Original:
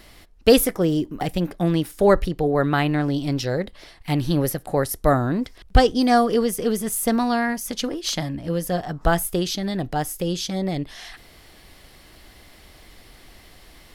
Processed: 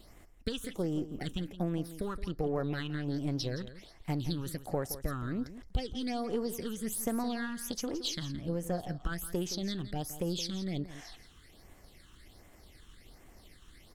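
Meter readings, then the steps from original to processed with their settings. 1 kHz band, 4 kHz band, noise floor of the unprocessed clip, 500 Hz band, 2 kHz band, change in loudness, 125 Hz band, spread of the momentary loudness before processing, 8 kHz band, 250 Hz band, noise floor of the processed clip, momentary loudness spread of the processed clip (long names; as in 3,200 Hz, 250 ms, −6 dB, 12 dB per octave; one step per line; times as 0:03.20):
−18.5 dB, −11.0 dB, −50 dBFS, −16.5 dB, −15.5 dB, −14.0 dB, −11.5 dB, 9 LU, −12.0 dB, −13.0 dB, −58 dBFS, 5 LU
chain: gain on one half-wave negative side −3 dB
dynamic equaliser 4,000 Hz, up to +7 dB, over −44 dBFS, Q 1
downward compressor 6 to 1, threshold −23 dBFS, peak gain reduction 13.5 dB
all-pass phaser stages 8, 1.3 Hz, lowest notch 620–4,400 Hz
single-tap delay 169 ms −13.5 dB
level −6.5 dB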